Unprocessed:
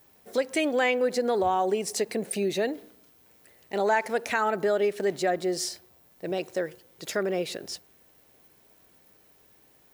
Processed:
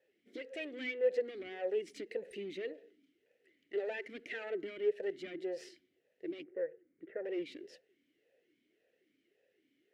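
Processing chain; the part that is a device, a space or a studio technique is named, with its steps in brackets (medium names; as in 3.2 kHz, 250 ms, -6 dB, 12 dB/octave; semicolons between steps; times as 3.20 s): talk box (valve stage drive 25 dB, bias 0.7; talking filter e-i 1.8 Hz); 6.43–7.25 s: inverse Chebyshev low-pass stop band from 6.9 kHz, stop band 70 dB; trim +3.5 dB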